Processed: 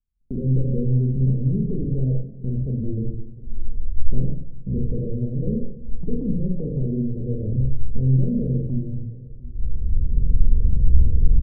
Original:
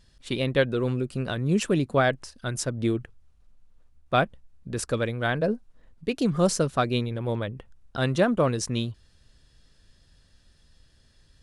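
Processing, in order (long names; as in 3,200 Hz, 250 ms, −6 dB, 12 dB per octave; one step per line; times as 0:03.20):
camcorder AGC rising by 16 dB per second
hum removal 45.23 Hz, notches 31
in parallel at −2 dB: downward compressor, threshold −32 dBFS, peak gain reduction 15 dB
on the sum: tube saturation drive 30 dB, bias 0.4
Butterworth low-pass 530 Hz 72 dB per octave
spectral tilt −2 dB per octave
noise gate −33 dBFS, range −42 dB
low-shelf EQ 110 Hz +9.5 dB
double-tracking delay 46 ms −4 dB
slap from a distant wall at 120 metres, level −21 dB
rectangular room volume 440 cubic metres, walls furnished, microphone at 1.5 metres
feedback echo with a swinging delay time 196 ms, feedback 59%, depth 120 cents, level −22.5 dB
level −2 dB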